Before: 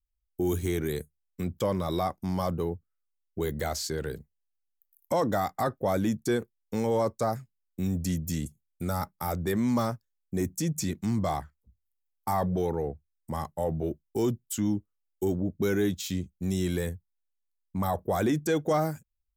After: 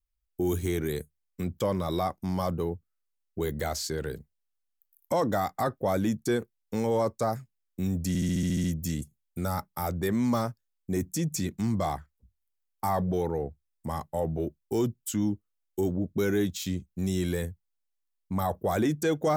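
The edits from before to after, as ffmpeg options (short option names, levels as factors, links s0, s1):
-filter_complex "[0:a]asplit=9[s0][s1][s2][s3][s4][s5][s6][s7][s8];[s0]atrim=end=8.152[s9];[s1]atrim=start=8.078:end=8.152[s10];[s2]atrim=start=8.078:end=8.152[s11];[s3]atrim=start=8.078:end=8.152[s12];[s4]atrim=start=8.078:end=8.152[s13];[s5]atrim=start=8.078:end=8.152[s14];[s6]atrim=start=8.078:end=8.152[s15];[s7]atrim=start=8.078:end=8.152[s16];[s8]atrim=start=8.078[s17];[s9][s10]acrossfade=d=0.004:c1=hsin:c2=hsin[s18];[s18][s11]acrossfade=d=0.004:c1=hsin:c2=hsin[s19];[s19][s12]acrossfade=d=0.004:c1=hsin:c2=hsin[s20];[s20][s13]acrossfade=d=0.004:c1=hsin:c2=hsin[s21];[s21][s14]acrossfade=d=0.004:c1=hsin:c2=hsin[s22];[s22][s15]acrossfade=d=0.004:c1=hsin:c2=hsin[s23];[s23][s16]acrossfade=d=0.004:c1=hsin:c2=hsin[s24];[s24][s17]acrossfade=d=0.004:c1=hsin:c2=hsin"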